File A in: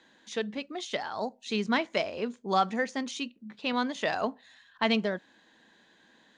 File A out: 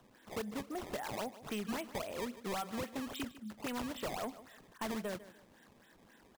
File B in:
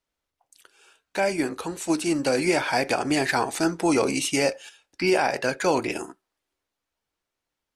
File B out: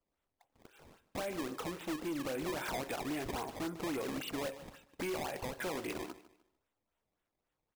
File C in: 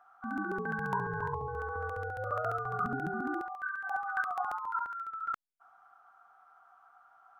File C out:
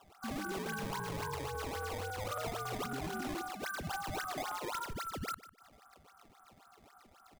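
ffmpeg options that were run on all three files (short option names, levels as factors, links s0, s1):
-af "acompressor=threshold=0.02:ratio=4,aresample=8000,aresample=44100,acrusher=samples=18:mix=1:aa=0.000001:lfo=1:lforange=28.8:lforate=3.7,aecho=1:1:150|300|450:0.141|0.0438|0.0136,asoftclip=type=hard:threshold=0.0237,volume=0.891"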